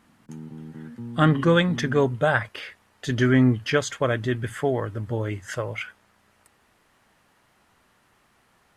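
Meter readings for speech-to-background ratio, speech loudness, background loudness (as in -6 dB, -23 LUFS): 15.0 dB, -23.5 LUFS, -38.5 LUFS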